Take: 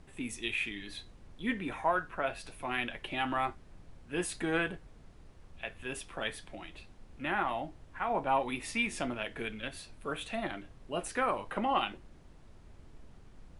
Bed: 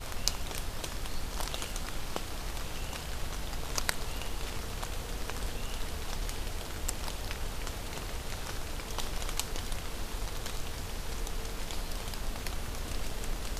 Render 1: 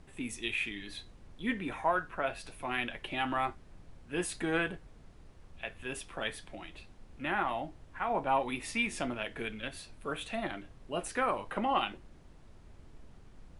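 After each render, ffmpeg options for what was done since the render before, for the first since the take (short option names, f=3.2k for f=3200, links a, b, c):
-af anull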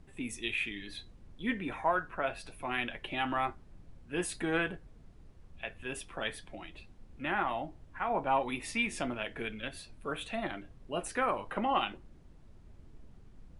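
-af "afftdn=nr=6:nf=-56"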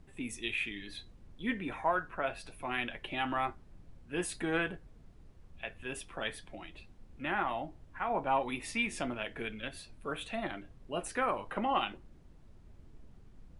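-af "volume=-1dB"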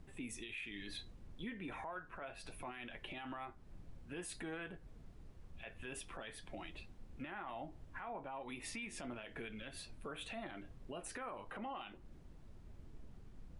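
-af "acompressor=threshold=-41dB:ratio=5,alimiter=level_in=12.5dB:limit=-24dB:level=0:latency=1:release=25,volume=-12.5dB"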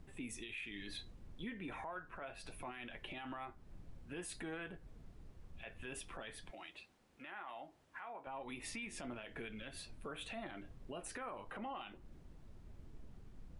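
-filter_complex "[0:a]asettb=1/sr,asplit=3[a][b][c];[a]atrim=end=6.514[d];[b]atrim=start=6.51:end=8.27,asetpts=PTS-STARTPTS,afade=t=in:d=0.004:c=qsin,afade=t=out:st=1.756:d=0.004:c=qsin,highpass=f=770:p=1[e];[c]atrim=start=8.266[f];[d][e]acrossfade=d=0.004:c1=hsin:c2=qsin[g];[g][f]acrossfade=d=0.004:c1=qsin:c2=hsin"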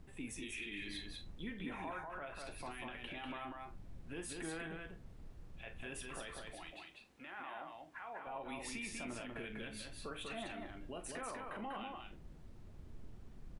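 -filter_complex "[0:a]asplit=2[a][b];[b]adelay=43,volume=-11.5dB[c];[a][c]amix=inputs=2:normalize=0,asplit=2[d][e];[e]aecho=0:1:194:0.668[f];[d][f]amix=inputs=2:normalize=0"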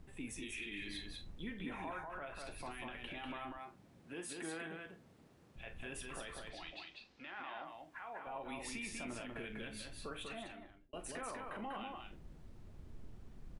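-filter_complex "[0:a]asettb=1/sr,asplit=3[a][b][c];[a]atrim=end=3.584[d];[b]atrim=start=3.58:end=5.56,asetpts=PTS-STARTPTS,afade=t=in:d=0.004:c=qsin,afade=t=out:st=1.976:d=0.004:c=qsin,highpass=180[e];[c]atrim=start=5.556[f];[d][e]acrossfade=d=0.004:c1=hsin:c2=qsin[g];[g][f]acrossfade=d=0.004:c1=qsin:c2=hsin,asettb=1/sr,asplit=3[h][i][j];[h]atrim=end=6.504[k];[i]atrim=start=6.5:end=7.65,asetpts=PTS-STARTPTS,afade=t=in:d=0.004:c=qsin,afade=t=out:st=1.146:d=0.004:c=qsin,lowpass=f=4.8k:t=q:w=2.5[l];[j]atrim=start=7.646[m];[k][l]acrossfade=d=0.004:c1=hsin:c2=qsin[n];[n][m]acrossfade=d=0.004:c1=qsin:c2=hsin,asplit=2[o][p];[o]atrim=end=10.93,asetpts=PTS-STARTPTS,afade=t=out:st=10.19:d=0.74[q];[p]atrim=start=10.93,asetpts=PTS-STARTPTS,afade=t=in:d=0.004:c=hsin[r];[q][r]concat=n=2:v=0:a=1"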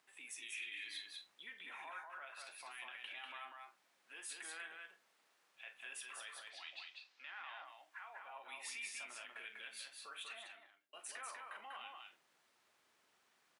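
-af "highpass=1.2k"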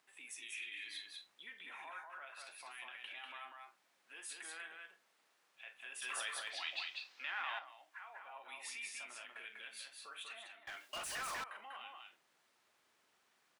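-filter_complex "[0:a]asettb=1/sr,asplit=3[a][b][c];[a]atrim=end=10.674[d];[b]atrim=start=10.67:end=11.44,asetpts=PTS-STARTPTS,afade=t=in:d=0.004:c=qsin,afade=t=out:st=0.766:d=0.004:c=qsin,asplit=2[e][f];[f]highpass=f=720:p=1,volume=33dB,asoftclip=type=tanh:threshold=-36dB[g];[e][g]amix=inputs=2:normalize=0,lowpass=f=6.8k:p=1,volume=-6dB[h];[c]atrim=start=11.436[i];[d][h]acrossfade=d=0.004:c1=hsin:c2=qsin[j];[j][i]acrossfade=d=0.004:c1=qsin:c2=hsin,asplit=3[k][l][m];[k]atrim=end=6.022[n];[l]atrim=start=6.018:end=7.592,asetpts=PTS-STARTPTS,volume=9dB[o];[m]atrim=start=7.588[p];[n][o]acrossfade=d=0.004:c1=hsin:c2=hsin[q];[q][p]acrossfade=d=0.004:c1=hsin:c2=hsin"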